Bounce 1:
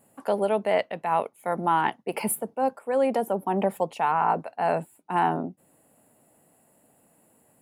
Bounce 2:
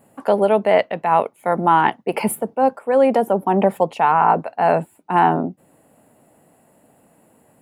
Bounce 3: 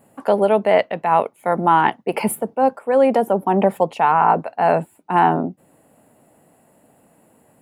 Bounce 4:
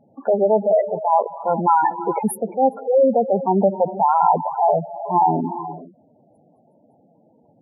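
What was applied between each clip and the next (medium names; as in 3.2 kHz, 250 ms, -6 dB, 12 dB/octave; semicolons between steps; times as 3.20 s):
peaking EQ 13 kHz -8 dB 2.1 oct; trim +8.5 dB
no audible change
gated-style reverb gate 440 ms rising, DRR 11 dB; spectral gate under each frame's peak -10 dB strong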